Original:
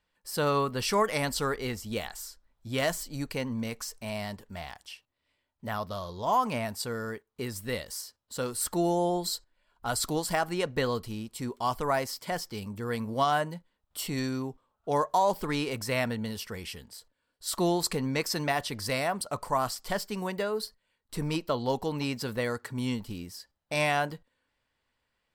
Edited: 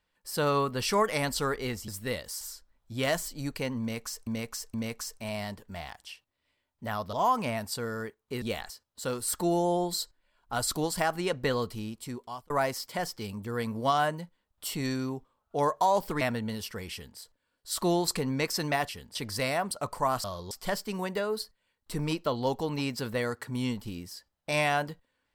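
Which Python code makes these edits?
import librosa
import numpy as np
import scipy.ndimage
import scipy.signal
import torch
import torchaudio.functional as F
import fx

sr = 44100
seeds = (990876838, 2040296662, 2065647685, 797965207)

y = fx.edit(x, sr, fx.swap(start_s=1.88, length_s=0.28, other_s=7.5, other_length_s=0.53),
    fx.repeat(start_s=3.55, length_s=0.47, count=3),
    fx.move(start_s=5.94, length_s=0.27, to_s=19.74),
    fx.fade_out_span(start_s=11.26, length_s=0.57),
    fx.cut(start_s=15.54, length_s=0.43),
    fx.duplicate(start_s=16.68, length_s=0.26, to_s=18.65), tone=tone)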